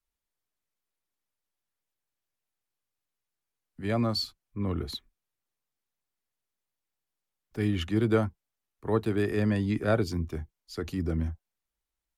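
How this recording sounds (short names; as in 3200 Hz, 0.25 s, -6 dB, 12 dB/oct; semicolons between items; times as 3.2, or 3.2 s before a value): noise floor -87 dBFS; spectral tilt -6.0 dB/oct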